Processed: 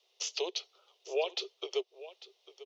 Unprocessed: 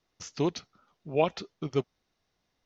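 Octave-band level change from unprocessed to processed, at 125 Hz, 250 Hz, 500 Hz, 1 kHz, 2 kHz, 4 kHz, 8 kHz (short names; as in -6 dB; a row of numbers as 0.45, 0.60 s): under -40 dB, -17.5 dB, -4.5 dB, -9.5 dB, -2.0 dB, +6.0 dB, n/a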